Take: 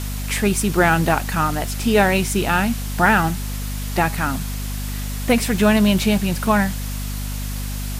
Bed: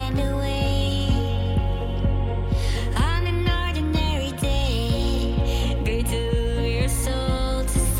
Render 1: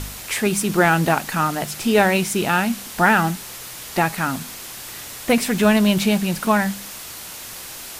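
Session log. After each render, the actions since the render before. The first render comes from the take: de-hum 50 Hz, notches 5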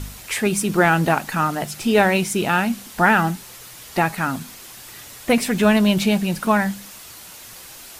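denoiser 6 dB, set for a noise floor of -35 dBFS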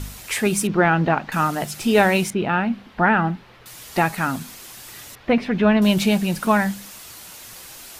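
0.67–1.32 air absorption 250 m; 2.3–3.66 air absorption 360 m; 5.15–5.82 air absorption 300 m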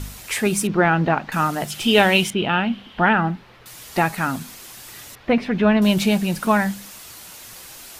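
1.7–3.13 bell 3100 Hz +13.5 dB 0.4 oct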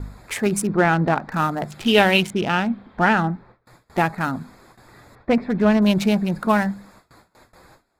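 Wiener smoothing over 15 samples; gate with hold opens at -39 dBFS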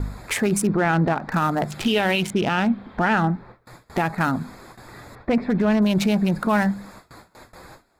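in parallel at 0 dB: compressor, threshold -28 dBFS, peak gain reduction 16.5 dB; on the sum: limiter -11.5 dBFS, peak gain reduction 9.5 dB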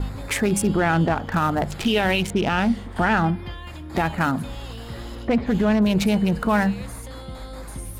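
add bed -13 dB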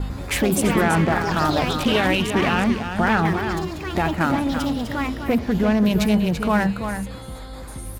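echo 0.336 s -8 dB; echoes that change speed 0.1 s, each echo +5 st, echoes 2, each echo -6 dB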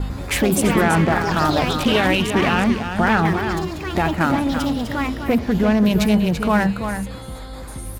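gain +2 dB

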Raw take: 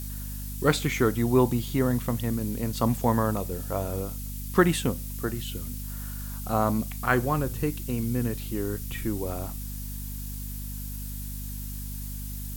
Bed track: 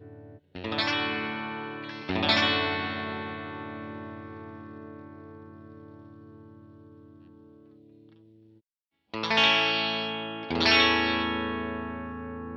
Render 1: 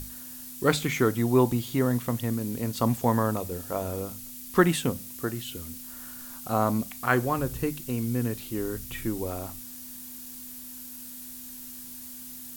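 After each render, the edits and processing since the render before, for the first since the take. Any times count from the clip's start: notches 50/100/150/200 Hz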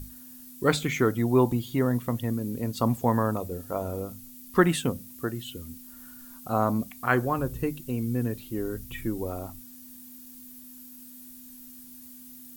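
denoiser 9 dB, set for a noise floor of -42 dBFS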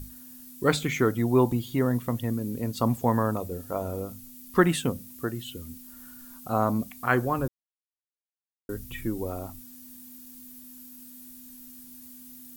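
7.48–8.69 mute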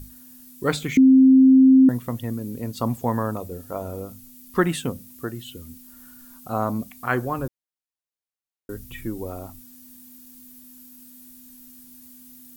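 0.97–1.89 bleep 263 Hz -9 dBFS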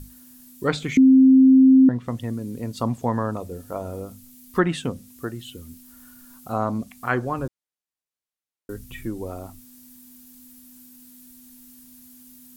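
treble ducked by the level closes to 3000 Hz, closed at -14 dBFS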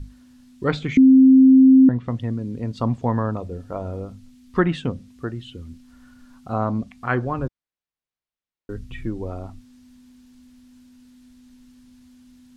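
LPF 4200 Hz 12 dB/oct; low shelf 130 Hz +8 dB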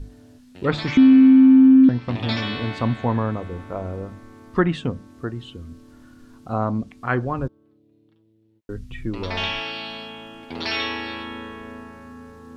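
add bed track -5 dB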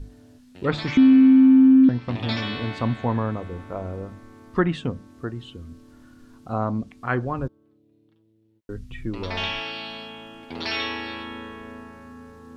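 gain -2 dB

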